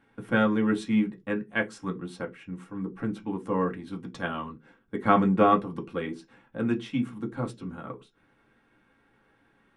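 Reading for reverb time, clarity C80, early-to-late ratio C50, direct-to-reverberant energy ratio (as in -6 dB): not exponential, 26.5 dB, 18.5 dB, 0.5 dB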